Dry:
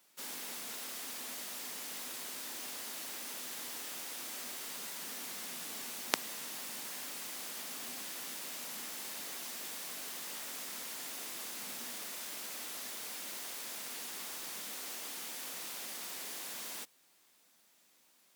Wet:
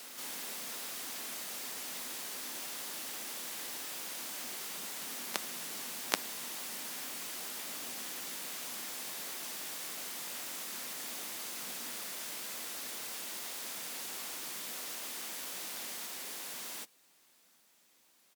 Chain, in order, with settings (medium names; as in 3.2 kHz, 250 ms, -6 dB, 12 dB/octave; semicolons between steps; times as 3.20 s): reverse echo 781 ms -5.5 dB; harmony voices -5 st -16 dB, +4 st -10 dB